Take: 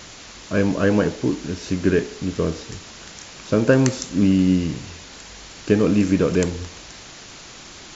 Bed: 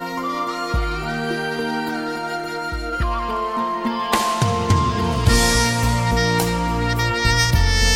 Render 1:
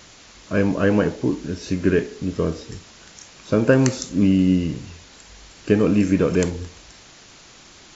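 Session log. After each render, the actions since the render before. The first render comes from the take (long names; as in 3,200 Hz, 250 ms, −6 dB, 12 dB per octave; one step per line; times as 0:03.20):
noise reduction from a noise print 6 dB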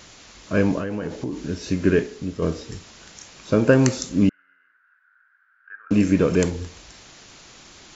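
0:00.78–0:01.44: downward compressor 10 to 1, threshold −23 dBFS
0:01.98–0:02.42: fade out, to −6 dB
0:04.29–0:05.91: flat-topped band-pass 1,500 Hz, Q 6.1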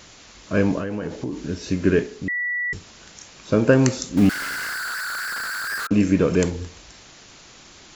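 0:02.28–0:02.73: beep over 1,950 Hz −22 dBFS
0:04.17–0:05.87: converter with a step at zero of −22.5 dBFS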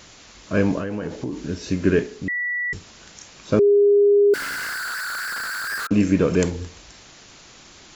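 0:03.59–0:04.34: beep over 407 Hz −11.5 dBFS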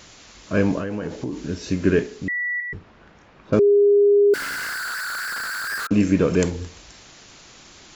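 0:02.60–0:03.53: low-pass filter 1,600 Hz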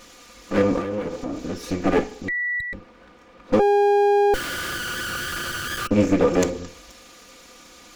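lower of the sound and its delayed copy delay 4.1 ms
hollow resonant body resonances 350/520/1,200/2,300 Hz, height 11 dB, ringing for 70 ms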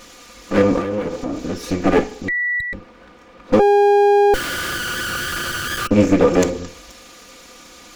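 level +4.5 dB
brickwall limiter −2 dBFS, peak gain reduction 2 dB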